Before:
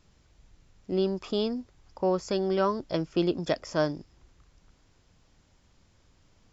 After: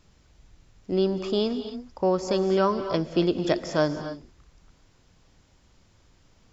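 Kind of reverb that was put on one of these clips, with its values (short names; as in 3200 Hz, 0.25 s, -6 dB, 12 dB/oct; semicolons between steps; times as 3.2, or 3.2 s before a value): non-linear reverb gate 0.3 s rising, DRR 9.5 dB; gain +3 dB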